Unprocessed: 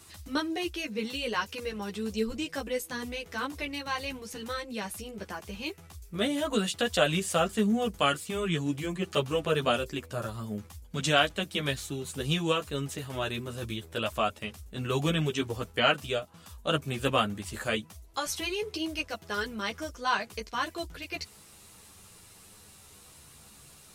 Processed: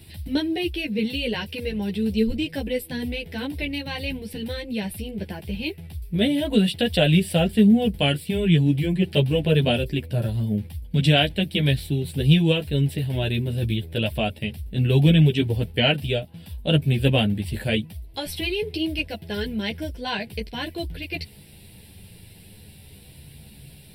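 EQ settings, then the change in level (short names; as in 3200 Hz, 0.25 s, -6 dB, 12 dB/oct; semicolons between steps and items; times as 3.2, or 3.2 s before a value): low shelf 90 Hz +7 dB; bell 140 Hz +7 dB 1.4 oct; fixed phaser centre 2900 Hz, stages 4; +6.5 dB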